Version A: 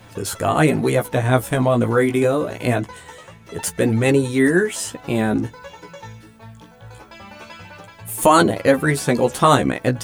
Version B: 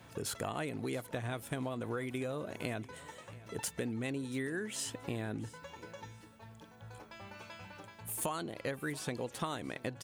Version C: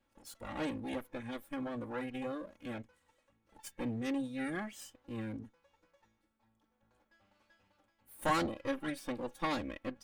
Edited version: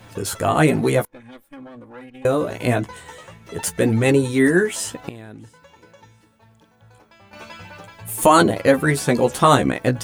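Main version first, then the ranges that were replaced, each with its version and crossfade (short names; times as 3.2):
A
1.05–2.25 from C
5.09–7.33 from B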